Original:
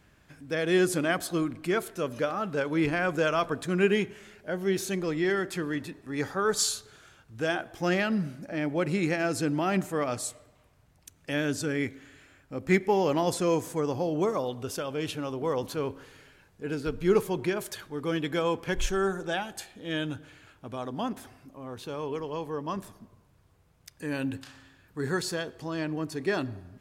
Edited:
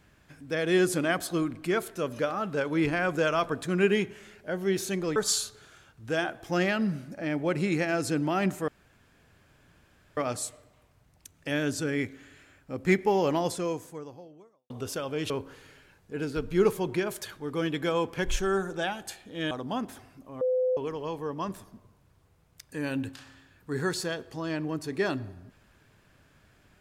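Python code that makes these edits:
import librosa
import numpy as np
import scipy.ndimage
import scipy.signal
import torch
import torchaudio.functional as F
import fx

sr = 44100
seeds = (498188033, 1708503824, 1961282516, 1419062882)

y = fx.edit(x, sr, fx.cut(start_s=5.16, length_s=1.31),
    fx.insert_room_tone(at_s=9.99, length_s=1.49),
    fx.fade_out_span(start_s=13.13, length_s=1.39, curve='qua'),
    fx.cut(start_s=15.12, length_s=0.68),
    fx.cut(start_s=20.01, length_s=0.78),
    fx.bleep(start_s=21.69, length_s=0.36, hz=509.0, db=-22.5), tone=tone)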